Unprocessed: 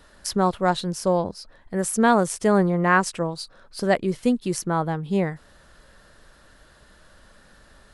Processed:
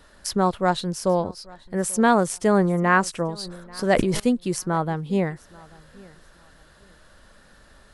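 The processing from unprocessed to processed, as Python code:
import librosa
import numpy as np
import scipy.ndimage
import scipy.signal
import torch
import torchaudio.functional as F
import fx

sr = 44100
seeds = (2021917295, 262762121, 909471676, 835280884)

p1 = x + fx.echo_feedback(x, sr, ms=838, feedback_pct=24, wet_db=-24.0, dry=0)
y = fx.sustainer(p1, sr, db_per_s=48.0, at=(3.37, 4.2))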